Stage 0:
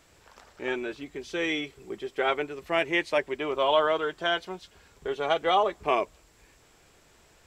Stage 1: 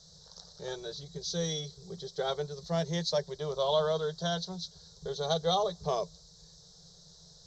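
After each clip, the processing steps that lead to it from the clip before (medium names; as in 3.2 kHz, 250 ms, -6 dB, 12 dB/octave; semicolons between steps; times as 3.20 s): FFT filter 120 Hz 0 dB, 170 Hz +15 dB, 250 Hz -29 dB, 460 Hz -1 dB, 860 Hz -8 dB, 1.7 kHz -14 dB, 2.6 kHz -29 dB, 3.9 kHz +13 dB, 6.3 kHz +11 dB, 9.3 kHz -19 dB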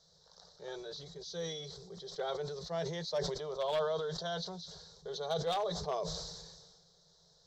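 one-sided wavefolder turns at -22.5 dBFS; tone controls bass -10 dB, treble -9 dB; decay stretcher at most 37 dB/s; trim -4.5 dB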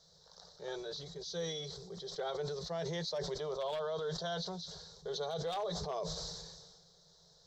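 peak limiter -32 dBFS, peak gain reduction 10 dB; trim +2 dB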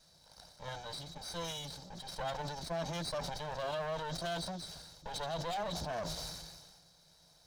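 comb filter that takes the minimum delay 1.3 ms; trim +1.5 dB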